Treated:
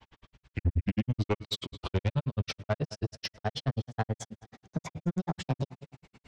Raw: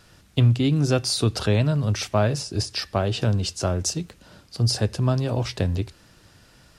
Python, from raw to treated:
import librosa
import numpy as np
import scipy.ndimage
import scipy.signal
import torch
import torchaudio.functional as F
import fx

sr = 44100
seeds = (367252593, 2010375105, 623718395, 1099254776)

p1 = fx.speed_glide(x, sr, from_pct=62, to_pct=154)
p2 = scipy.signal.sosfilt(scipy.signal.butter(2, 4000.0, 'lowpass', fs=sr, output='sos'), p1)
p3 = p2 + fx.echo_feedback(p2, sr, ms=207, feedback_pct=39, wet_db=-20, dry=0)
p4 = fx.granulator(p3, sr, seeds[0], grain_ms=59.0, per_s=9.3, spray_ms=15.0, spread_st=0)
y = 10.0 ** (-21.0 / 20.0) * np.tanh(p4 / 10.0 ** (-21.0 / 20.0))